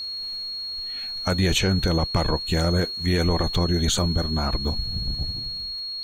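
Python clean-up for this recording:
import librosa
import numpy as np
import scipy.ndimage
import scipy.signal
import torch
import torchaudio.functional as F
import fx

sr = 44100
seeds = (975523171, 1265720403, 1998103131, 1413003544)

y = fx.fix_declick_ar(x, sr, threshold=6.5)
y = fx.notch(y, sr, hz=4300.0, q=30.0)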